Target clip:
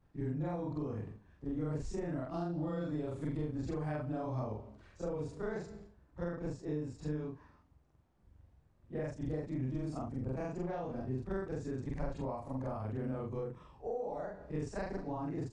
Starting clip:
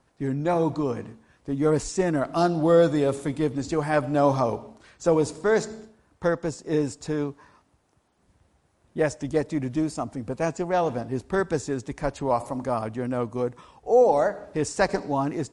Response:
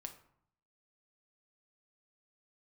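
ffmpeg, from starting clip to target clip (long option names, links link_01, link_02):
-af "afftfilt=real='re':imag='-im':win_size=4096:overlap=0.75,acompressor=threshold=-33dB:ratio=5,aemphasis=mode=reproduction:type=bsi,volume=-5.5dB"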